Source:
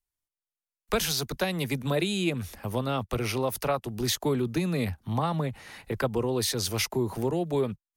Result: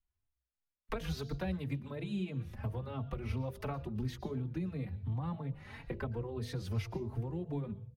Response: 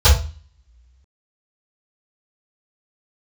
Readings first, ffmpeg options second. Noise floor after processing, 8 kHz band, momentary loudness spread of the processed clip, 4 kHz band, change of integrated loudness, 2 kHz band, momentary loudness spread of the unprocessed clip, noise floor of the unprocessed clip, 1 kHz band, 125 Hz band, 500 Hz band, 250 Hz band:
below −85 dBFS, below −25 dB, 3 LU, −19.5 dB, −10.5 dB, −14.0 dB, 5 LU, below −85 dBFS, −14.0 dB, −5.0 dB, −14.0 dB, −9.5 dB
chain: -filter_complex "[0:a]bass=frequency=250:gain=11,treble=frequency=4000:gain=-15,acompressor=threshold=-31dB:ratio=12,bandreject=frequency=49.21:width_type=h:width=4,bandreject=frequency=98.42:width_type=h:width=4,bandreject=frequency=147.63:width_type=h:width=4,bandreject=frequency=196.84:width_type=h:width=4,bandreject=frequency=246.05:width_type=h:width=4,bandreject=frequency=295.26:width_type=h:width=4,bandreject=frequency=344.47:width_type=h:width=4,bandreject=frequency=393.68:width_type=h:width=4,bandreject=frequency=442.89:width_type=h:width=4,bandreject=frequency=492.1:width_type=h:width=4,bandreject=frequency=541.31:width_type=h:width=4,bandreject=frequency=590.52:width_type=h:width=4,bandreject=frequency=639.73:width_type=h:width=4,bandreject=frequency=688.94:width_type=h:width=4,asplit=2[link_01][link_02];[1:a]atrim=start_sample=2205,highshelf=frequency=2400:gain=12,adelay=110[link_03];[link_02][link_03]afir=irnorm=-1:irlink=0,volume=-44.5dB[link_04];[link_01][link_04]amix=inputs=2:normalize=0,asplit=2[link_05][link_06];[link_06]adelay=3.8,afreqshift=2.9[link_07];[link_05][link_07]amix=inputs=2:normalize=1"

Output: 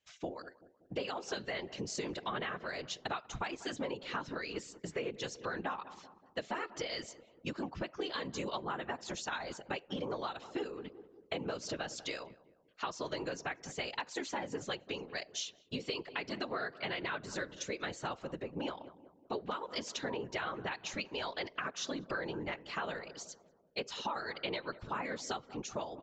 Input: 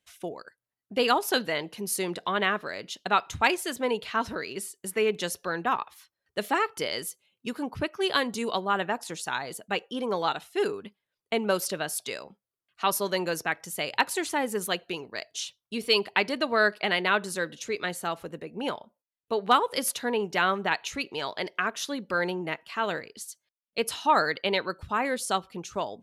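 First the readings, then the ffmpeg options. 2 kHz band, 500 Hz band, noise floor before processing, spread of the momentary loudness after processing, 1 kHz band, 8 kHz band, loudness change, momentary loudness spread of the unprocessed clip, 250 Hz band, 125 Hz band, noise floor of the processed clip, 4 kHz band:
−11.5 dB, −11.0 dB, below −85 dBFS, 5 LU, −12.5 dB, −11.0 dB, −11.5 dB, 12 LU, −9.0 dB, −5.5 dB, −66 dBFS, −10.0 dB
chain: -filter_complex "[0:a]alimiter=limit=-13.5dB:level=0:latency=1:release=261,aresample=16000,aresample=44100,afftfilt=real='hypot(re,im)*cos(2*PI*random(0))':imag='hypot(re,im)*sin(2*PI*random(1))':win_size=512:overlap=0.75,asplit=2[link_01][link_02];[link_02]adelay=190,lowpass=frequency=980:poles=1,volume=-19dB,asplit=2[link_03][link_04];[link_04]adelay=190,lowpass=frequency=980:poles=1,volume=0.53,asplit=2[link_05][link_06];[link_06]adelay=190,lowpass=frequency=980:poles=1,volume=0.53,asplit=2[link_07][link_08];[link_08]adelay=190,lowpass=frequency=980:poles=1,volume=0.53[link_09];[link_01][link_03][link_05][link_07][link_09]amix=inputs=5:normalize=0,acompressor=threshold=-38dB:ratio=10,volume=3.5dB"

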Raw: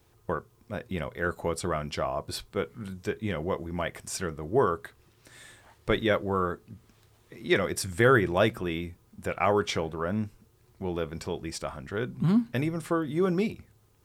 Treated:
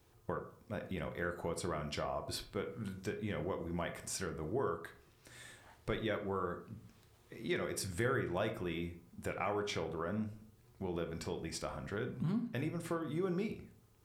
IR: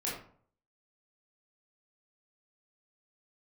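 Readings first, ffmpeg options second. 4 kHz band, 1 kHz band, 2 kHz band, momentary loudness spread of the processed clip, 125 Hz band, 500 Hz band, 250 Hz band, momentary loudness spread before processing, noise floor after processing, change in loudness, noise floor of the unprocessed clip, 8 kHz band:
−9.0 dB, −11.0 dB, −11.5 dB, 11 LU, −9.0 dB, −10.5 dB, −9.5 dB, 11 LU, −66 dBFS, −10.5 dB, −63 dBFS, −6.5 dB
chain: -filter_complex "[0:a]acompressor=threshold=-33dB:ratio=2.5,asplit=2[link_01][link_02];[1:a]atrim=start_sample=2205[link_03];[link_02][link_03]afir=irnorm=-1:irlink=0,volume=-8dB[link_04];[link_01][link_04]amix=inputs=2:normalize=0,volume=-6.5dB"

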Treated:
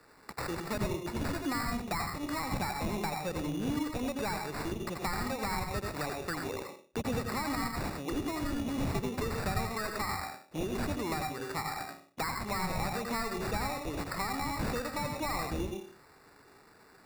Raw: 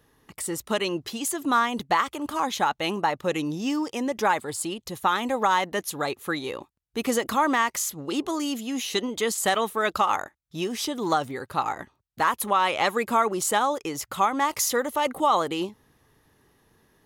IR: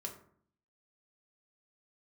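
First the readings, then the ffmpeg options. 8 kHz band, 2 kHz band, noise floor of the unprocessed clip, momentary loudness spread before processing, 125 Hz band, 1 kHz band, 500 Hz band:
−12.5 dB, −8.5 dB, −70 dBFS, 8 LU, +4.0 dB, −12.0 dB, −9.5 dB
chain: -filter_complex "[0:a]asplit=2[link_01][link_02];[link_02]highpass=frequency=720:poles=1,volume=14dB,asoftclip=type=tanh:threshold=-10.5dB[link_03];[link_01][link_03]amix=inputs=2:normalize=0,lowpass=frequency=4800:poles=1,volume=-6dB,asplit=2[link_04][link_05];[1:a]atrim=start_sample=2205,asetrate=83790,aresample=44100,adelay=82[link_06];[link_05][link_06]afir=irnorm=-1:irlink=0,volume=3dB[link_07];[link_04][link_07]amix=inputs=2:normalize=0,acrusher=samples=14:mix=1:aa=0.000001,acrossover=split=190[link_08][link_09];[link_09]acompressor=threshold=-34dB:ratio=4[link_10];[link_08][link_10]amix=inputs=2:normalize=0,volume=-2dB"

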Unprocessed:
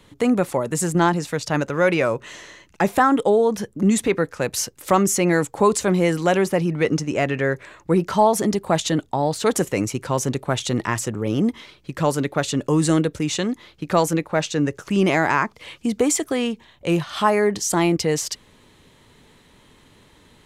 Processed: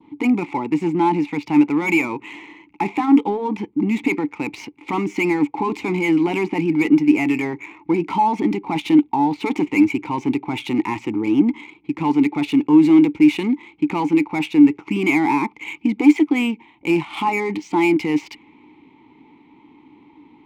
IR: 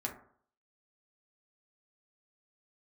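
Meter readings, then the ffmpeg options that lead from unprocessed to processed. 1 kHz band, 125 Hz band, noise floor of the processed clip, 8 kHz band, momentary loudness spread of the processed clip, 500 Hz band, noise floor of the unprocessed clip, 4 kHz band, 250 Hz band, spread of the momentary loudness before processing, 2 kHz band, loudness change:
0.0 dB, −6.0 dB, −52 dBFS, below −15 dB, 10 LU, −5.0 dB, −54 dBFS, −4.5 dB, +6.0 dB, 7 LU, +1.0 dB, +2.0 dB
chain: -filter_complex "[0:a]adynamicequalizer=threshold=0.01:dfrequency=2300:dqfactor=1.4:tfrequency=2300:tqfactor=1.4:attack=5:release=100:ratio=0.375:range=4:mode=boostabove:tftype=bell,apsyclip=17dB,asplit=3[link_01][link_02][link_03];[link_01]bandpass=frequency=300:width_type=q:width=8,volume=0dB[link_04];[link_02]bandpass=frequency=870:width_type=q:width=8,volume=-6dB[link_05];[link_03]bandpass=frequency=2240:width_type=q:width=8,volume=-9dB[link_06];[link_04][link_05][link_06]amix=inputs=3:normalize=0,adynamicsmooth=sensitivity=6:basefreq=3200,volume=-1dB"

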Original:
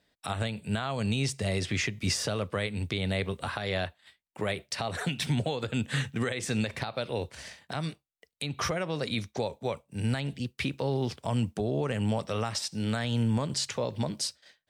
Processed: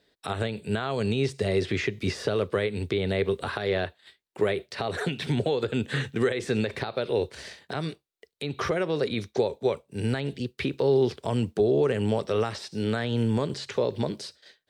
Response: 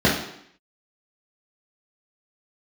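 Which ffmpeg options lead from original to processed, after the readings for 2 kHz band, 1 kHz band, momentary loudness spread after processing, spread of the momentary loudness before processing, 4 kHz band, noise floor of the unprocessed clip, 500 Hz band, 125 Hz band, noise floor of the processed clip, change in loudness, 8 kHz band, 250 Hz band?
+1.5 dB, +2.0 dB, 8 LU, 6 LU, −1.5 dB, −79 dBFS, +8.0 dB, +0.5 dB, −75 dBFS, +3.5 dB, −8.5 dB, +3.0 dB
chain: -filter_complex "[0:a]equalizer=frequency=400:width_type=o:width=0.67:gain=12,equalizer=frequency=1600:width_type=o:width=0.67:gain=3,equalizer=frequency=4000:width_type=o:width=0.67:gain=6,acrossover=split=2800[link_01][link_02];[link_02]acompressor=threshold=-40dB:ratio=4:attack=1:release=60[link_03];[link_01][link_03]amix=inputs=2:normalize=0"

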